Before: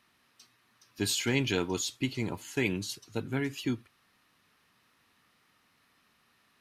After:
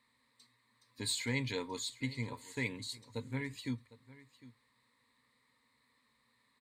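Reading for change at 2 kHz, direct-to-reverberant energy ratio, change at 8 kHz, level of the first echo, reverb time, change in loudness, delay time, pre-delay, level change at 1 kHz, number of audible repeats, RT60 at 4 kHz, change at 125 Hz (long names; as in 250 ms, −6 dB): −5.5 dB, no reverb audible, −7.0 dB, −18.5 dB, no reverb audible, −7.0 dB, 755 ms, no reverb audible, −6.0 dB, 1, no reverb audible, −5.5 dB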